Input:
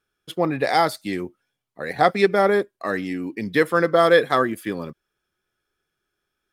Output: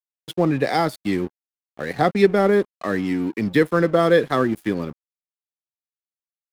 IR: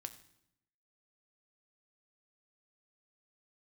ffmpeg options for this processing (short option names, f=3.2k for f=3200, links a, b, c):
-filter_complex "[0:a]acrossover=split=360[a][b];[b]acompressor=threshold=-43dB:ratio=1.5[c];[a][c]amix=inputs=2:normalize=0,aeval=exprs='sgn(val(0))*max(abs(val(0))-0.00531,0)':c=same,volume=7dB"